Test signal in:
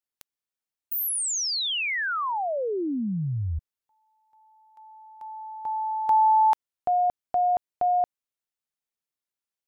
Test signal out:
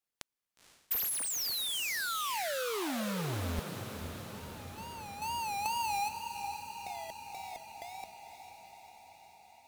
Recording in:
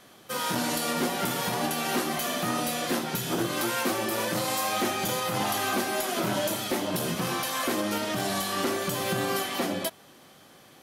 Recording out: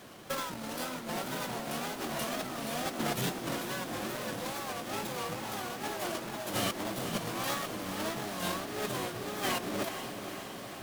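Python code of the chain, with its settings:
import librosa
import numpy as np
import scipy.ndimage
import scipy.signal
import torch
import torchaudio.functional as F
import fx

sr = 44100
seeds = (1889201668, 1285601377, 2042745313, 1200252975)

y = fx.halfwave_hold(x, sr)
y = fx.over_compress(y, sr, threshold_db=-28.0, ratio=-0.5)
y = fx.wow_flutter(y, sr, seeds[0], rate_hz=2.1, depth_cents=140.0)
y = fx.echo_diffused(y, sr, ms=488, feedback_pct=68, wet_db=-8.0)
y = y * librosa.db_to_amplitude(-7.5)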